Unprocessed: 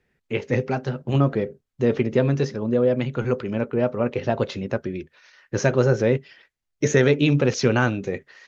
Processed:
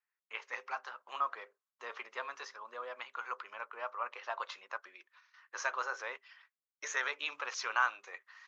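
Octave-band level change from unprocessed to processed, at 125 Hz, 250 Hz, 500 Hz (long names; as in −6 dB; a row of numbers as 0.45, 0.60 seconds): below −40 dB, below −40 dB, −26.5 dB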